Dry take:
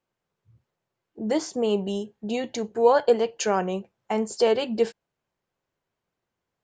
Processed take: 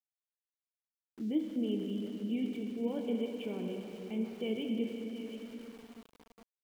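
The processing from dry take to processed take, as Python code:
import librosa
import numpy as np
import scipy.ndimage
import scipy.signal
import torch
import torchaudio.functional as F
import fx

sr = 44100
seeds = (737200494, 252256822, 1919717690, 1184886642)

p1 = fx.formant_cascade(x, sr, vowel='i')
p2 = fx.low_shelf(p1, sr, hz=66.0, db=-8.0)
p3 = p2 + fx.echo_thinned(p2, sr, ms=725, feedback_pct=15, hz=770.0, wet_db=-9.5, dry=0)
p4 = fx.rev_plate(p3, sr, seeds[0], rt60_s=4.1, hf_ratio=0.8, predelay_ms=0, drr_db=2.0)
y = np.where(np.abs(p4) >= 10.0 ** (-52.0 / 20.0), p4, 0.0)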